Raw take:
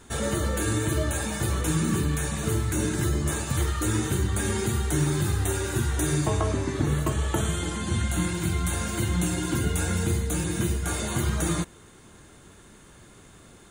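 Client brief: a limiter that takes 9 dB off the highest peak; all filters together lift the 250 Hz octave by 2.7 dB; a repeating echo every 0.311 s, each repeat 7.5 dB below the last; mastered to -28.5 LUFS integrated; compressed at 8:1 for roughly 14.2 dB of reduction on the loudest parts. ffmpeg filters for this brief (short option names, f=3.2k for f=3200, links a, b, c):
-af "equalizer=f=250:t=o:g=4,acompressor=threshold=-34dB:ratio=8,alimiter=level_in=8dB:limit=-24dB:level=0:latency=1,volume=-8dB,aecho=1:1:311|622|933|1244|1555:0.422|0.177|0.0744|0.0312|0.0131,volume=12dB"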